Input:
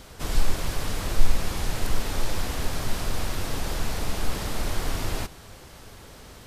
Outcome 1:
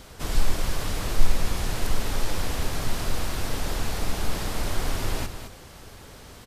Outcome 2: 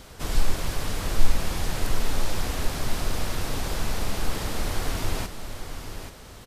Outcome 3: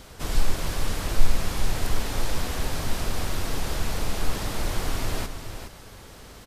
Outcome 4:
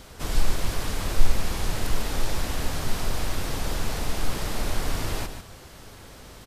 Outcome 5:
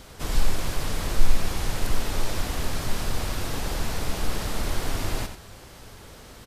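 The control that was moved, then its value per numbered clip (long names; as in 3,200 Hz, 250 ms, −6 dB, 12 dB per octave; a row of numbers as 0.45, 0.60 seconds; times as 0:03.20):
single-tap delay, delay time: 216, 834, 416, 147, 89 milliseconds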